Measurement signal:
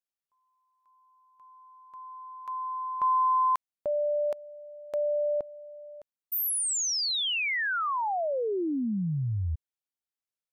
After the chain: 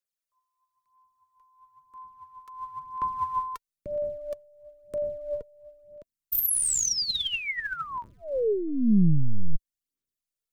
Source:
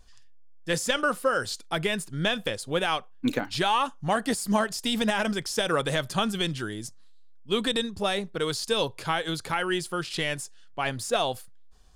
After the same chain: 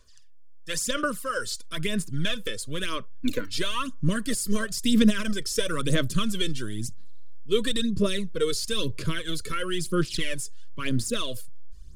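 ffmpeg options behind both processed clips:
ffmpeg -i in.wav -filter_complex "[0:a]bass=frequency=250:gain=-8,treble=frequency=4000:gain=6,acrossover=split=150[link_01][link_02];[link_01]aeval=exprs='abs(val(0))':channel_layout=same[link_03];[link_03][link_02]amix=inputs=2:normalize=0,aphaser=in_gain=1:out_gain=1:delay=2.3:decay=0.6:speed=1:type=sinusoidal,asuperstop=centerf=800:order=12:qfactor=2.6,asubboost=boost=11.5:cutoff=210,volume=-4.5dB" out.wav

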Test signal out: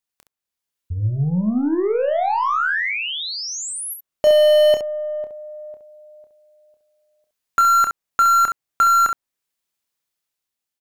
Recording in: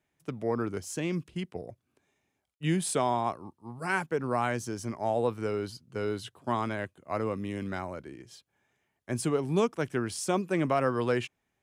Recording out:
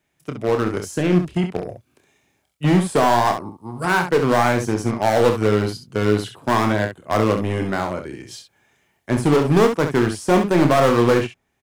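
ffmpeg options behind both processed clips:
ffmpeg -i in.wav -filter_complex "[0:a]dynaudnorm=framelen=330:gausssize=5:maxgain=5dB,acrossover=split=1800[link_01][link_02];[link_01]aeval=exprs='0.0794*(cos(1*acos(clip(val(0)/0.0794,-1,1)))-cos(1*PI/2))+0.00178*(cos(2*acos(clip(val(0)/0.0794,-1,1)))-cos(2*PI/2))+0.0158*(cos(3*acos(clip(val(0)/0.0794,-1,1)))-cos(3*PI/2))+0.00501*(cos(5*acos(clip(val(0)/0.0794,-1,1)))-cos(5*PI/2))':channel_layout=same[link_03];[link_02]alimiter=level_in=11dB:limit=-24dB:level=0:latency=1:release=441,volume=-11dB[link_04];[link_03][link_04]amix=inputs=2:normalize=0,aecho=1:1:28|67:0.398|0.398,volume=8.5dB" out.wav

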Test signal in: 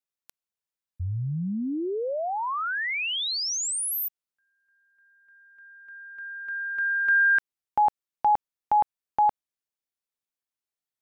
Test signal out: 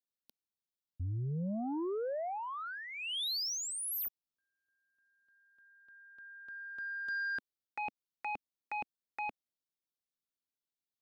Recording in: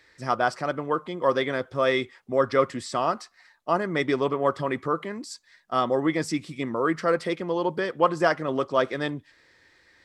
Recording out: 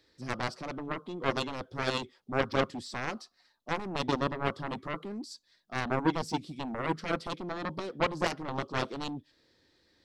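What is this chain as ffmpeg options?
ffmpeg -i in.wav -af "equalizer=frequency=250:width_type=o:width=1:gain=5,equalizer=frequency=1000:width_type=o:width=1:gain=-4,equalizer=frequency=2000:width_type=o:width=1:gain=-12,equalizer=frequency=4000:width_type=o:width=1:gain=5,equalizer=frequency=8000:width_type=o:width=1:gain=-6,aeval=exprs='0.355*(cos(1*acos(clip(val(0)/0.355,-1,1)))-cos(1*PI/2))+0.112*(cos(7*acos(clip(val(0)/0.355,-1,1)))-cos(7*PI/2))':channel_layout=same,volume=-6.5dB" out.wav

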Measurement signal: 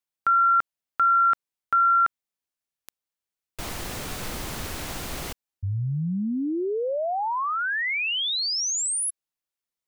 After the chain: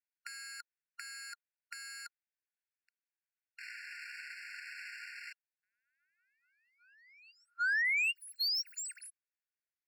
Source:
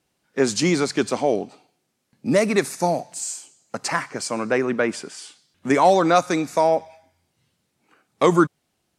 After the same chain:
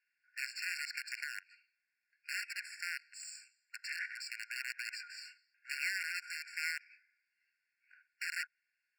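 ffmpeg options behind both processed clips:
ffmpeg -i in.wav -af "equalizer=frequency=160:width=6.6:gain=2,acompressor=threshold=-31dB:ratio=5:attack=0.13:release=59:knee=6:detection=peak,aeval=exprs='(mod(25.1*val(0)+1,2)-1)/25.1':channel_layout=same,adynamicsmooth=sensitivity=7.5:basefreq=2200,afftfilt=real='re*eq(mod(floor(b*sr/1024/1400),2),1)':imag='im*eq(mod(floor(b*sr/1024/1400),2),1)':win_size=1024:overlap=0.75,volume=2.5dB" out.wav

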